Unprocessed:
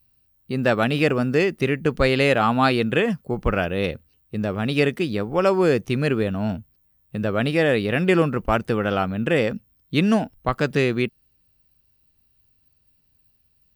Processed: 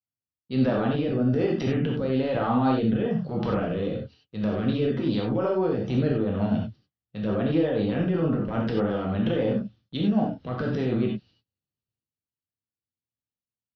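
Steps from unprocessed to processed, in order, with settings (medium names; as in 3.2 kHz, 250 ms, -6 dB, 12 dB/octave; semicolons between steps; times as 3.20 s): gate -52 dBFS, range -28 dB; level-controlled noise filter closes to 1.5 kHz, open at -16.5 dBFS; high-pass 120 Hz 12 dB/octave; low-pass that closes with the level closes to 1.1 kHz, closed at -19.5 dBFS; high-order bell 4.3 kHz +13.5 dB 1.2 oct; transient shaper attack -9 dB, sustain +8 dB; peak limiter -19 dBFS, peak gain reduction 10.5 dB; rotary cabinet horn 1.1 Hz, later 8 Hz, at 4.96 s; reverberation, pre-delay 3 ms, DRR -2 dB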